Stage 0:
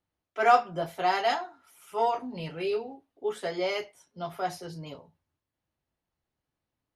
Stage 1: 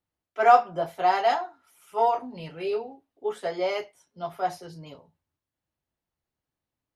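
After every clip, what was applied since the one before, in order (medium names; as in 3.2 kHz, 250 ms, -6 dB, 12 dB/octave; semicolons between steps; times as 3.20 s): dynamic bell 750 Hz, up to +7 dB, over -38 dBFS, Q 0.72; trim -2.5 dB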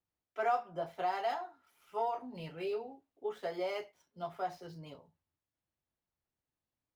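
median filter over 5 samples; compression 2:1, threshold -30 dBFS, peak gain reduction 10.5 dB; trim -5.5 dB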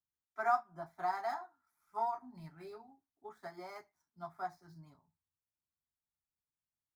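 static phaser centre 1.2 kHz, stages 4; upward expansion 1.5:1, over -58 dBFS; trim +5 dB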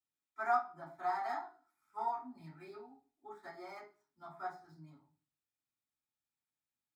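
reverberation RT60 0.35 s, pre-delay 3 ms, DRR -5.5 dB; trim -6.5 dB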